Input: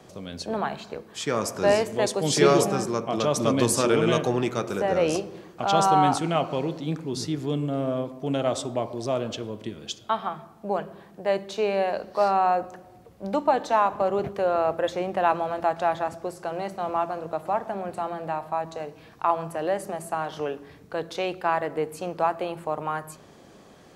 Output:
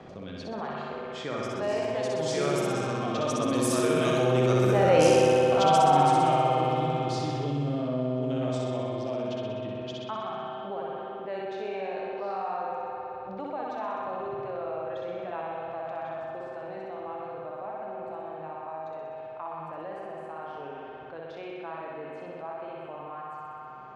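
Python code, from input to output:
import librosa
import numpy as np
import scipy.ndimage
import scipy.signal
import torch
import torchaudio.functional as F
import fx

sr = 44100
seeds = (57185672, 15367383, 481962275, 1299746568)

p1 = fx.doppler_pass(x, sr, speed_mps=6, closest_m=1.4, pass_at_s=5.12)
p2 = p1 + fx.room_flutter(p1, sr, wall_m=10.8, rt60_s=1.2, dry=0)
p3 = fx.rev_spring(p2, sr, rt60_s=3.0, pass_ms=(55,), chirp_ms=40, drr_db=1.0)
p4 = fx.env_lowpass(p3, sr, base_hz=2900.0, full_db=-30.0)
y = fx.env_flatten(p4, sr, amount_pct=50)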